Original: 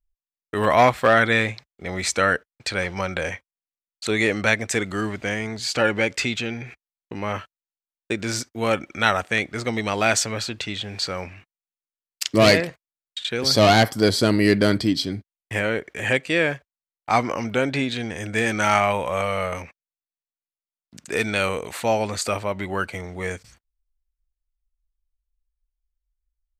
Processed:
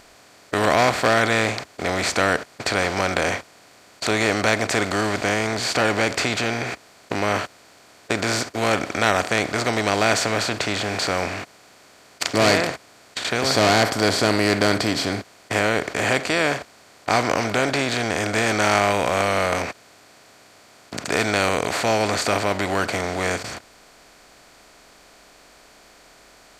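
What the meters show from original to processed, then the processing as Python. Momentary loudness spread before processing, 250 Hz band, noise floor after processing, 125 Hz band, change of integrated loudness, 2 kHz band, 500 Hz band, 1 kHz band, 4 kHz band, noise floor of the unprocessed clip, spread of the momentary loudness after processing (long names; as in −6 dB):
14 LU, 0.0 dB, −51 dBFS, −0.5 dB, +1.0 dB, +1.5 dB, +1.0 dB, +2.0 dB, +2.0 dB, below −85 dBFS, 10 LU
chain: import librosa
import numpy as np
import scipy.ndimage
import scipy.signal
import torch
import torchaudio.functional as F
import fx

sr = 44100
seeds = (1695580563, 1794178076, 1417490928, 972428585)

y = fx.bin_compress(x, sr, power=0.4)
y = y * 10.0 ** (-6.5 / 20.0)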